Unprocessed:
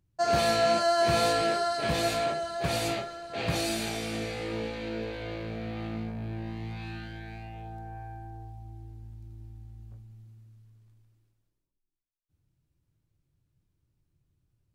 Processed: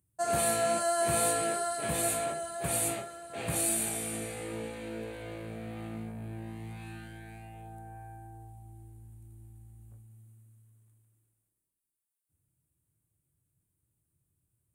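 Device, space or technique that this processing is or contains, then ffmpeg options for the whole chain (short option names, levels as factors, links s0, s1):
budget condenser microphone: -af "highpass=61,highshelf=f=6900:t=q:w=3:g=11.5,volume=0.596"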